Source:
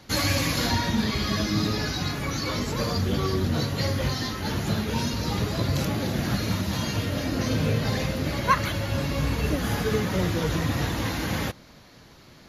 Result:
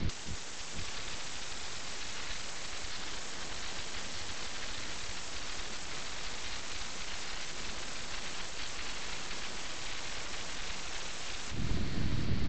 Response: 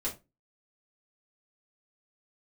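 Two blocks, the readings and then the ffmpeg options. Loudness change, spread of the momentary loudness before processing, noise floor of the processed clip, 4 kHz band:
−13.5 dB, 4 LU, −37 dBFS, −8.5 dB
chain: -filter_complex "[0:a]acrossover=split=5600[link_01][link_02];[link_01]aeval=exprs='0.376*sin(PI/2*3.16*val(0)/0.376)':channel_layout=same[link_03];[link_03][link_02]amix=inputs=2:normalize=0,afftfilt=real='re*lt(hypot(re,im),0.2)':imag='im*lt(hypot(re,im),0.2)':win_size=1024:overlap=0.75,equalizer=frequency=570:width_type=o:width=3:gain=-14,acrossover=split=350|3000[link_04][link_05][link_06];[link_05]acompressor=threshold=-31dB:ratio=8[link_07];[link_04][link_07][link_06]amix=inputs=3:normalize=0,alimiter=limit=-23dB:level=0:latency=1:release=165,acompressor=threshold=-37dB:ratio=5,aemphasis=mode=reproduction:type=bsi,aresample=16000,aeval=exprs='abs(val(0))':channel_layout=same,aresample=44100,aecho=1:1:258|741:0.398|0.299,volume=3.5dB"

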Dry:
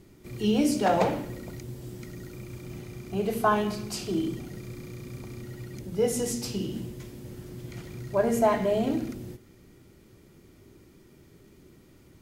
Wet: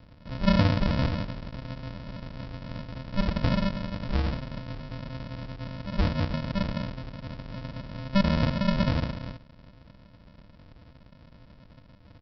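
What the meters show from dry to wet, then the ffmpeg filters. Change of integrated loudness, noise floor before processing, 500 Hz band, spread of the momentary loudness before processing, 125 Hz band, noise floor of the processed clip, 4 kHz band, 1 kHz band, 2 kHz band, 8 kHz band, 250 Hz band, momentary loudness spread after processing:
−1.5 dB, −56 dBFS, −7.5 dB, 18 LU, +8.0 dB, −54 dBFS, +3.0 dB, −5.5 dB, +1.5 dB, below −15 dB, +0.5 dB, 15 LU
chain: -filter_complex "[0:a]acrossover=split=320[link_01][link_02];[link_02]acompressor=threshold=-27dB:ratio=6[link_03];[link_01][link_03]amix=inputs=2:normalize=0,aresample=11025,acrusher=samples=28:mix=1:aa=0.000001,aresample=44100,volume=3dB"

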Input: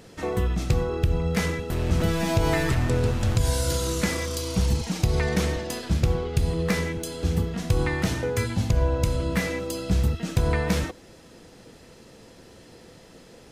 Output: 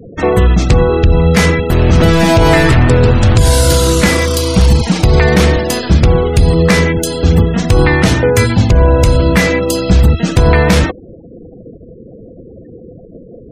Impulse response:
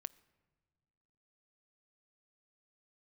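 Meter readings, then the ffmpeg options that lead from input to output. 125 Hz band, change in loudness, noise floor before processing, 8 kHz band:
+14.5 dB, +15.0 dB, −50 dBFS, +13.0 dB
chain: -af "adynamicequalizer=threshold=0.00501:dfrequency=6300:dqfactor=1.6:tfrequency=6300:tqfactor=1.6:attack=5:release=100:ratio=0.375:range=2:mode=cutabove:tftype=bell,apsyclip=18.5dB,afftfilt=real='re*gte(hypot(re,im),0.0794)':imag='im*gte(hypot(re,im),0.0794)':win_size=1024:overlap=0.75,volume=-2dB"

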